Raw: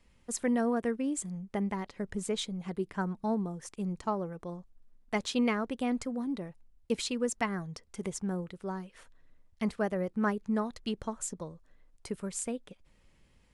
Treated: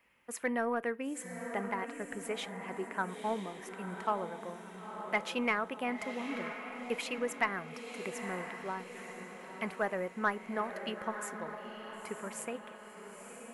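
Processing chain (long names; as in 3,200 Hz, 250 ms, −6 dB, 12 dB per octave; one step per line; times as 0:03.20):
high-pass filter 1,300 Hz 6 dB per octave
flat-topped bell 5,700 Hz −15.5 dB
in parallel at −4.5 dB: soft clipping −30 dBFS, distortion −14 dB
on the sum: feedback delay with all-pass diffusion 959 ms, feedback 51%, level −8 dB
on a send at −19 dB: convolution reverb RT60 0.35 s, pre-delay 6 ms
on the sum: level +2.5 dB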